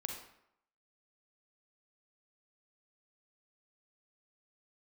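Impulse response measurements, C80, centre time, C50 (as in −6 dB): 7.5 dB, 34 ms, 4.0 dB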